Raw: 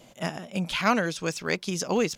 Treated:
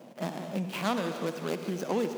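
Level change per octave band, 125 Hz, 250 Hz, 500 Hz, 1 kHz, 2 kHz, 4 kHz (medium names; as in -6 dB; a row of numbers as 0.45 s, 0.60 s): -3.5 dB, -3.5 dB, -3.0 dB, -5.5 dB, -10.0 dB, -8.0 dB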